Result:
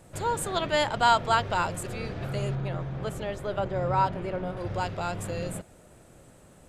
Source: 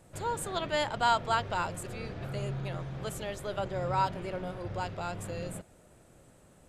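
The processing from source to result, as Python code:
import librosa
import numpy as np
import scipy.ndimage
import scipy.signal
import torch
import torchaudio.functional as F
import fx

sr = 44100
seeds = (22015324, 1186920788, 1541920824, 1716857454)

y = fx.high_shelf(x, sr, hz=3200.0, db=-10.5, at=(2.55, 4.57))
y = y * 10.0 ** (5.0 / 20.0)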